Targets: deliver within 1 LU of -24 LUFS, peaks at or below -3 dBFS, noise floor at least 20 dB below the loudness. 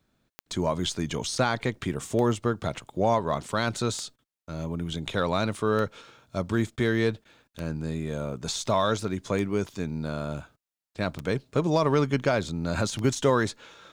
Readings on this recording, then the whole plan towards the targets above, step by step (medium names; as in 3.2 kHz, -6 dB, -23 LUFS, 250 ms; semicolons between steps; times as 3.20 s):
clicks found 8; loudness -28.0 LUFS; peak level -11.5 dBFS; loudness target -24.0 LUFS
-> de-click; trim +4 dB